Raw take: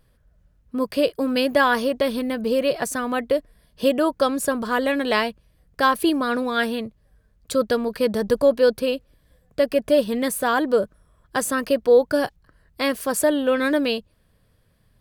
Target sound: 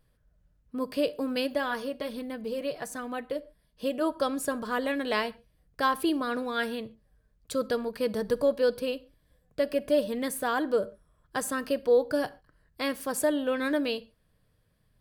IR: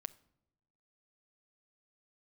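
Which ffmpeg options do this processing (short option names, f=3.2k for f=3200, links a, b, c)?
-filter_complex "[0:a]asplit=3[a][b][c];[a]afade=t=out:st=1.46:d=0.02[d];[b]flanger=delay=3.7:depth=3.2:regen=-47:speed=1.3:shape=sinusoidal,afade=t=in:st=1.46:d=0.02,afade=t=out:st=4:d=0.02[e];[c]afade=t=in:st=4:d=0.02[f];[d][e][f]amix=inputs=3:normalize=0[g];[1:a]atrim=start_sample=2205,atrim=end_sample=6615[h];[g][h]afir=irnorm=-1:irlink=0,volume=-4dB"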